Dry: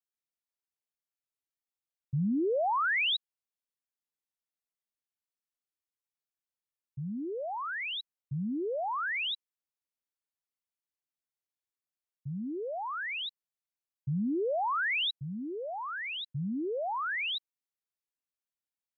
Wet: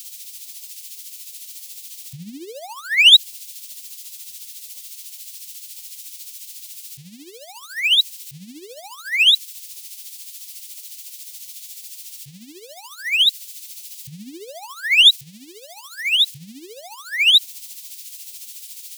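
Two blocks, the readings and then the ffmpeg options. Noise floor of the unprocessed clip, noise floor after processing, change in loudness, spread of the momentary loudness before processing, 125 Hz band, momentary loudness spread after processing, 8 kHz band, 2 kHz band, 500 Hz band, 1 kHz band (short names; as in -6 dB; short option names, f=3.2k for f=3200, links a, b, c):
under -85 dBFS, -42 dBFS, +18.5 dB, 11 LU, -7.0 dB, 23 LU, n/a, +12.5 dB, -7.0 dB, -8.0 dB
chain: -af "aeval=exprs='val(0)+0.5*0.00251*sgn(val(0))':c=same,aexciter=amount=14.1:drive=9.5:freq=2.2k,tremolo=f=14:d=0.53,volume=-5dB"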